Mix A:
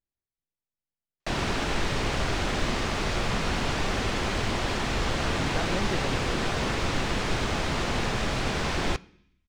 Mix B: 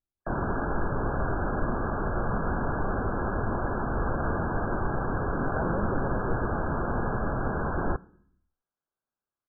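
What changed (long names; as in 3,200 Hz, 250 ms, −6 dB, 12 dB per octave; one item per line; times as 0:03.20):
background: entry −1.00 s
master: add linear-phase brick-wall low-pass 1,700 Hz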